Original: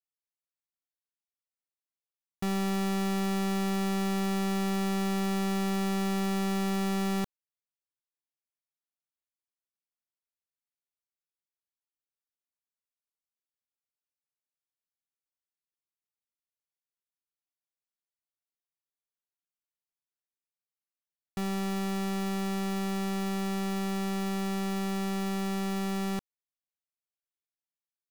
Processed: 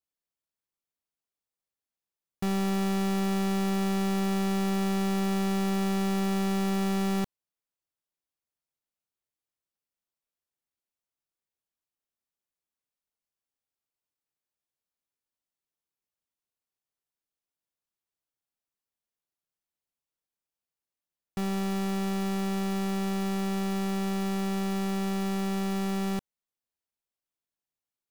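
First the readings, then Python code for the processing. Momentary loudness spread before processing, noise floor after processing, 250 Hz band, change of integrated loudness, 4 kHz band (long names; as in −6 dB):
3 LU, below −85 dBFS, +2.0 dB, +2.0 dB, +0.5 dB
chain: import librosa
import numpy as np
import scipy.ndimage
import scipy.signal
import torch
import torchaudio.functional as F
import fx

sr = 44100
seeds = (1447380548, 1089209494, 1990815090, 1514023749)

p1 = fx.sample_hold(x, sr, seeds[0], rate_hz=2400.0, jitter_pct=0)
y = x + (p1 * 10.0 ** (-11.0 / 20.0))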